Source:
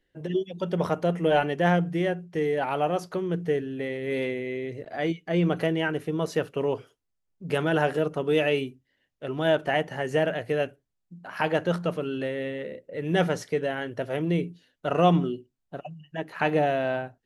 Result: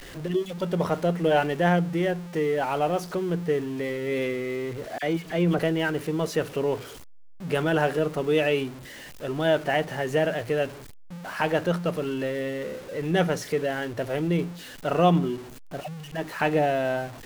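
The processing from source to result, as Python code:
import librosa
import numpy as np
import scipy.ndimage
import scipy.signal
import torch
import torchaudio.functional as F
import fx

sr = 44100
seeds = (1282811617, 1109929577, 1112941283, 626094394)

y = x + 0.5 * 10.0 ** (-36.5 / 20.0) * np.sign(x)
y = fx.dispersion(y, sr, late='lows', ms=45.0, hz=2100.0, at=(4.98, 5.59))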